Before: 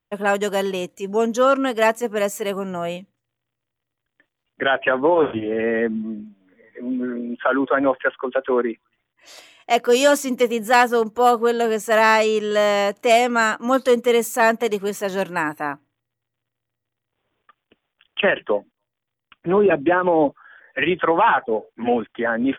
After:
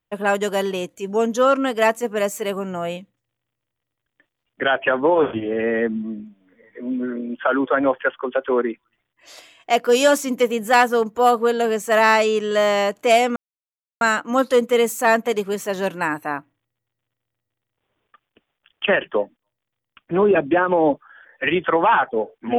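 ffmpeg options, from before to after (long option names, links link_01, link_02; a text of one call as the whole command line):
ffmpeg -i in.wav -filter_complex "[0:a]asplit=2[link_01][link_02];[link_01]atrim=end=13.36,asetpts=PTS-STARTPTS,afade=type=out:start_time=13.356:duration=0.004:curve=hsin,apad=pad_dur=0.65[link_03];[link_02]atrim=start=13.36,asetpts=PTS-STARTPTS,afade=type=in:duration=0.004:curve=hsin[link_04];[link_03][link_04]concat=n=2:v=0:a=1" out.wav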